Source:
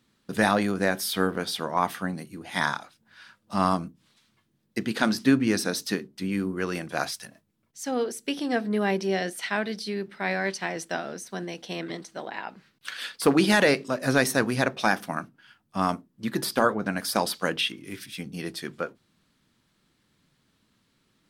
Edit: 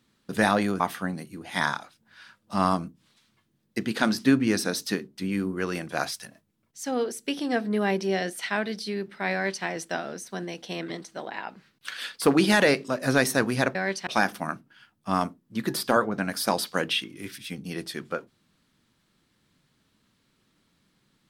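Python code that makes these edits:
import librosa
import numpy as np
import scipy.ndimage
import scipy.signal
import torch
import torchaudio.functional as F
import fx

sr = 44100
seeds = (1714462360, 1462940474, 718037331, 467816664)

y = fx.edit(x, sr, fx.cut(start_s=0.8, length_s=1.0),
    fx.duplicate(start_s=10.33, length_s=0.32, to_s=14.75), tone=tone)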